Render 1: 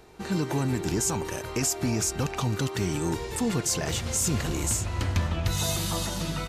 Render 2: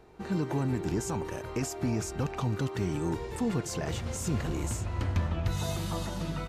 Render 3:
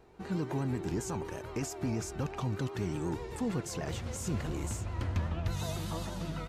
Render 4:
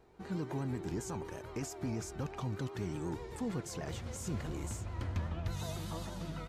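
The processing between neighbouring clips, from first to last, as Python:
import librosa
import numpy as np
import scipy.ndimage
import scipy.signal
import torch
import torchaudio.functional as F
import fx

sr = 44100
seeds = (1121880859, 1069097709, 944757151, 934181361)

y1 = fx.high_shelf(x, sr, hz=2700.0, db=-11.0)
y1 = y1 * librosa.db_to_amplitude(-2.5)
y2 = fx.vibrato(y1, sr, rate_hz=8.2, depth_cents=64.0)
y2 = y2 * librosa.db_to_amplitude(-3.5)
y3 = fx.notch(y2, sr, hz=2700.0, q=27.0)
y3 = y3 * librosa.db_to_amplitude(-4.0)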